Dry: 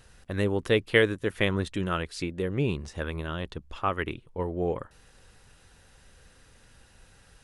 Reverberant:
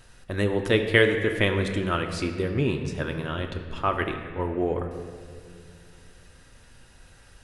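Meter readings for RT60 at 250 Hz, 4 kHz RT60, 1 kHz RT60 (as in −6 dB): 2.9 s, 1.4 s, 1.8 s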